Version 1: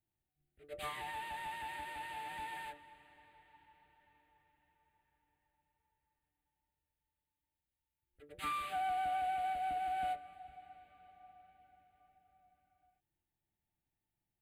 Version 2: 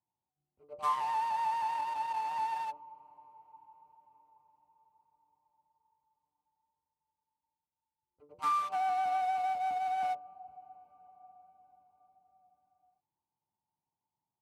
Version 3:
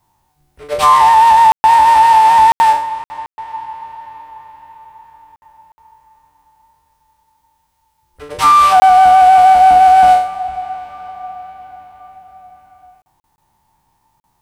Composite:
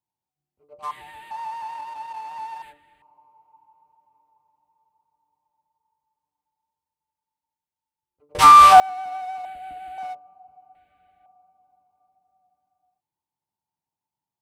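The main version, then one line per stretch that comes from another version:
2
0.91–1.31 s: from 1
2.62–3.02 s: from 1
8.35–8.80 s: from 3
9.45–9.98 s: from 1
10.75–11.26 s: from 1

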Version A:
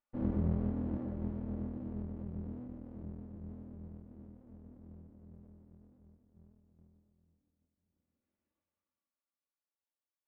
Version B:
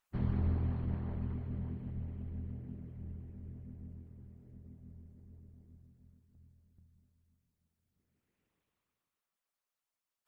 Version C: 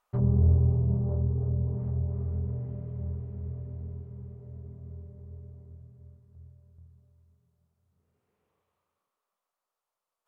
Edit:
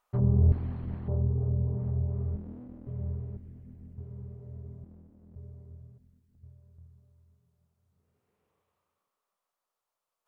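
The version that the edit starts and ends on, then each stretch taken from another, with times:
C
0.52–1.08 s: from B
2.36–2.87 s: from A
3.37–3.98 s: from B
4.84–5.36 s: from A
5.98–6.43 s: from B

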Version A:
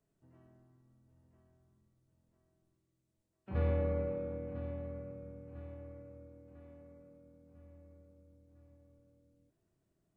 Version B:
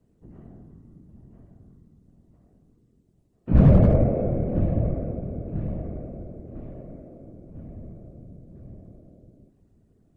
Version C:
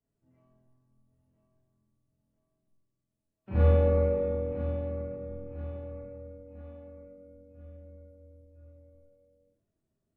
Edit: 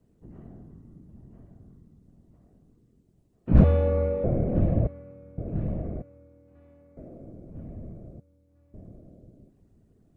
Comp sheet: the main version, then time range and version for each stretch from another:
B
3.64–4.24 s: from C
4.87–5.38 s: from A
6.02–6.97 s: from A
8.20–8.74 s: from A

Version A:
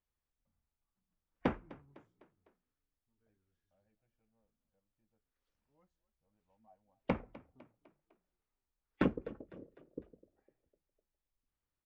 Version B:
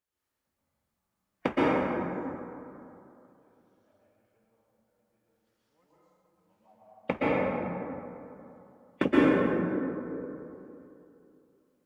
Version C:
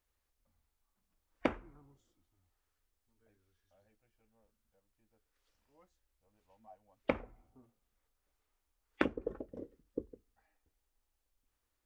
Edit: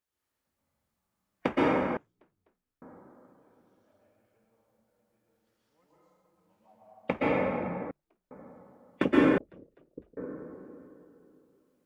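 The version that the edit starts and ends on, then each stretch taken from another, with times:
B
1.97–2.82 s: from A
7.91–8.31 s: from A
9.38–10.17 s: from A
not used: C

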